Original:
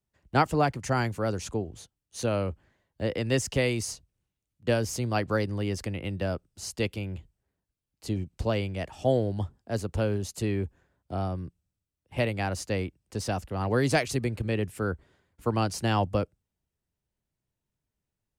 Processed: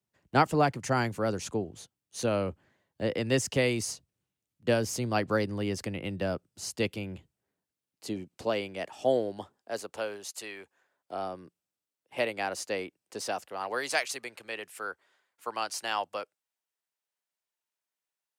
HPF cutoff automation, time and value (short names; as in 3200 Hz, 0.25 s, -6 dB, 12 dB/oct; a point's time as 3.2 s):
6.91 s 130 Hz
8.49 s 300 Hz
9.15 s 300 Hz
10.56 s 960 Hz
11.27 s 380 Hz
13.16 s 380 Hz
13.91 s 830 Hz